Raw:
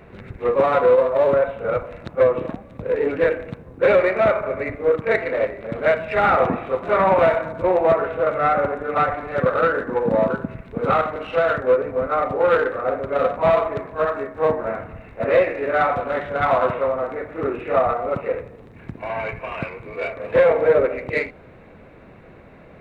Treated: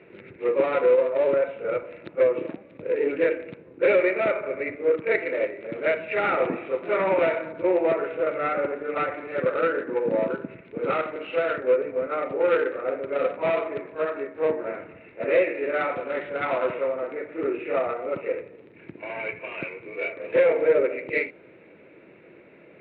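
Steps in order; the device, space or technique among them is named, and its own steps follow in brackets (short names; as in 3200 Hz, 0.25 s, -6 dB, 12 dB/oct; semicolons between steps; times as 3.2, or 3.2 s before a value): kitchen radio (speaker cabinet 230–3400 Hz, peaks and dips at 230 Hz -5 dB, 340 Hz +6 dB, 750 Hz -9 dB, 1100 Hz -9 dB, 1600 Hz -3 dB, 2400 Hz +5 dB); gain -3 dB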